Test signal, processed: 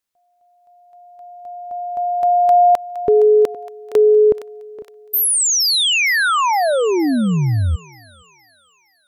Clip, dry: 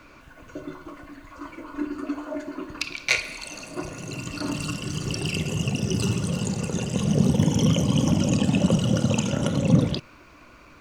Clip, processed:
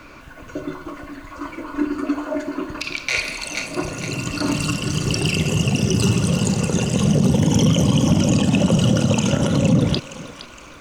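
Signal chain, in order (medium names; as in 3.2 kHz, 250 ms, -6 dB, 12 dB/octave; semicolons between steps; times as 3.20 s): thinning echo 465 ms, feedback 52%, high-pass 860 Hz, level -13 dB; peak limiter -15 dBFS; trim +7.5 dB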